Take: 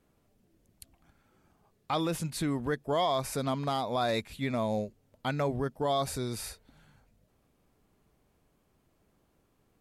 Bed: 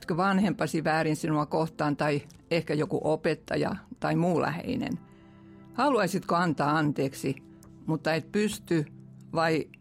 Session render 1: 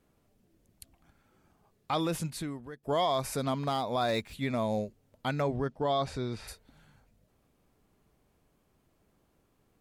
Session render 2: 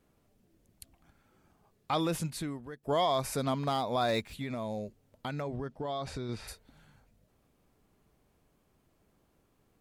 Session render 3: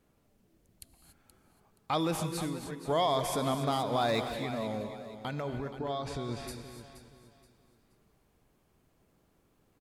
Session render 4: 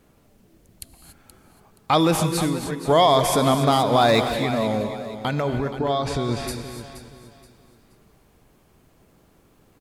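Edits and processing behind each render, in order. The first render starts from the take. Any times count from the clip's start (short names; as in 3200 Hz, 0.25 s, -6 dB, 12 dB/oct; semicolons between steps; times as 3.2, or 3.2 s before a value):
2.24–2.83 fade out quadratic, to -15 dB; 3.51–4.33 median filter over 3 samples; 5.41–6.47 LPF 7600 Hz -> 3100 Hz
4.3–6.29 compressor, threshold -32 dBFS
feedback echo 0.475 s, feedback 31%, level -12.5 dB; non-linear reverb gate 0.31 s rising, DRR 7.5 dB
gain +12 dB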